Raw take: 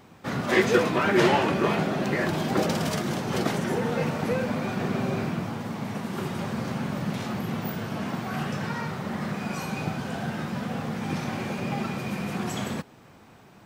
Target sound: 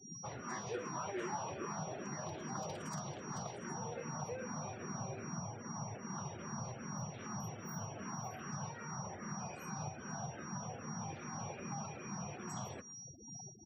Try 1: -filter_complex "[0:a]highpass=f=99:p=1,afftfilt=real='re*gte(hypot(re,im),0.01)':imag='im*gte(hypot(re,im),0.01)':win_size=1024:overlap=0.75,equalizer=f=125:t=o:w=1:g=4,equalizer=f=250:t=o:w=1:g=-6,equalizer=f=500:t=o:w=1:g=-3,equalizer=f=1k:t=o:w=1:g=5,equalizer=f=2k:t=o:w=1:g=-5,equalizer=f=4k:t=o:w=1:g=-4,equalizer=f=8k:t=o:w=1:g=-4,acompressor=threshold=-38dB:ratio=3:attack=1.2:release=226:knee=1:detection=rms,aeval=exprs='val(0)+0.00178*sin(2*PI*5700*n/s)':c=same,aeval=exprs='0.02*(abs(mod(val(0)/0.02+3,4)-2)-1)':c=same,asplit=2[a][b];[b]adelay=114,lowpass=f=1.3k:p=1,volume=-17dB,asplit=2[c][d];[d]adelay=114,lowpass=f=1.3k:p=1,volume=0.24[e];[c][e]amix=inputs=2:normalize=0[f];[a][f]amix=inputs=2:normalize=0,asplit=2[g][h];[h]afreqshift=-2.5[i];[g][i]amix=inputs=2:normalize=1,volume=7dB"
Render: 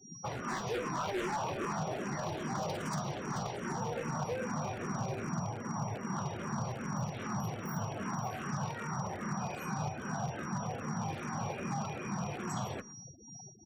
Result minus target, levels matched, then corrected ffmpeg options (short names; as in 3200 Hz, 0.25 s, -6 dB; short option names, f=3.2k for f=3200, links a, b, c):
compressor: peak gain reduction -7.5 dB
-filter_complex "[0:a]highpass=f=99:p=1,afftfilt=real='re*gte(hypot(re,im),0.01)':imag='im*gte(hypot(re,im),0.01)':win_size=1024:overlap=0.75,equalizer=f=125:t=o:w=1:g=4,equalizer=f=250:t=o:w=1:g=-6,equalizer=f=500:t=o:w=1:g=-3,equalizer=f=1k:t=o:w=1:g=5,equalizer=f=2k:t=o:w=1:g=-5,equalizer=f=4k:t=o:w=1:g=-4,equalizer=f=8k:t=o:w=1:g=-4,acompressor=threshold=-49.5dB:ratio=3:attack=1.2:release=226:knee=1:detection=rms,aeval=exprs='val(0)+0.00178*sin(2*PI*5700*n/s)':c=same,aeval=exprs='0.02*(abs(mod(val(0)/0.02+3,4)-2)-1)':c=same,asplit=2[a][b];[b]adelay=114,lowpass=f=1.3k:p=1,volume=-17dB,asplit=2[c][d];[d]adelay=114,lowpass=f=1.3k:p=1,volume=0.24[e];[c][e]amix=inputs=2:normalize=0[f];[a][f]amix=inputs=2:normalize=0,asplit=2[g][h];[h]afreqshift=-2.5[i];[g][i]amix=inputs=2:normalize=1,volume=7dB"